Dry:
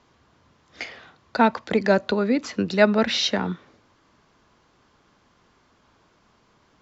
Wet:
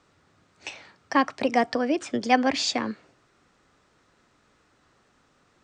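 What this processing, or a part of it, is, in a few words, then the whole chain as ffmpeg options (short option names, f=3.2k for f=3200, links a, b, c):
nightcore: -af "asetrate=53361,aresample=44100,volume=-3dB"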